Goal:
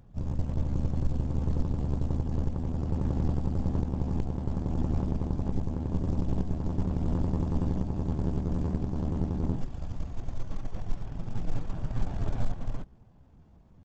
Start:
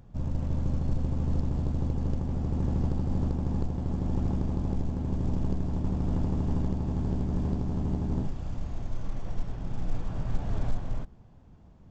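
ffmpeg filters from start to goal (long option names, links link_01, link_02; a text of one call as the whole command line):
ffmpeg -i in.wav -af "atempo=0.86,aeval=exprs='0.2*(cos(1*acos(clip(val(0)/0.2,-1,1)))-cos(1*PI/2))+0.01*(cos(6*acos(clip(val(0)/0.2,-1,1)))-cos(6*PI/2))+0.00708*(cos(7*acos(clip(val(0)/0.2,-1,1)))-cos(7*PI/2))':channel_layout=same" out.wav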